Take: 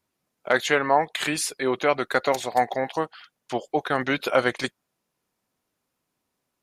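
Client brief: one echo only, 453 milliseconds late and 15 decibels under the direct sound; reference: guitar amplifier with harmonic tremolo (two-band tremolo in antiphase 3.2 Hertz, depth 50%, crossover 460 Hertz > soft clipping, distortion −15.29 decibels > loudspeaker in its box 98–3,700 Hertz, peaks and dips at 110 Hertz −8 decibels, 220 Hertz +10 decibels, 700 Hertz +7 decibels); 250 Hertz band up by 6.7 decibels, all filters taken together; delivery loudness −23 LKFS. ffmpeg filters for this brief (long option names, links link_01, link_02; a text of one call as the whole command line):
ffmpeg -i in.wav -filter_complex "[0:a]equalizer=frequency=250:width_type=o:gain=4.5,aecho=1:1:453:0.178,acrossover=split=460[link_01][link_02];[link_01]aeval=exprs='val(0)*(1-0.5/2+0.5/2*cos(2*PI*3.2*n/s))':channel_layout=same[link_03];[link_02]aeval=exprs='val(0)*(1-0.5/2-0.5/2*cos(2*PI*3.2*n/s))':channel_layout=same[link_04];[link_03][link_04]amix=inputs=2:normalize=0,asoftclip=threshold=-15.5dB,highpass=98,equalizer=frequency=110:width_type=q:width=4:gain=-8,equalizer=frequency=220:width_type=q:width=4:gain=10,equalizer=frequency=700:width_type=q:width=4:gain=7,lowpass=frequency=3700:width=0.5412,lowpass=frequency=3700:width=1.3066,volume=3dB" out.wav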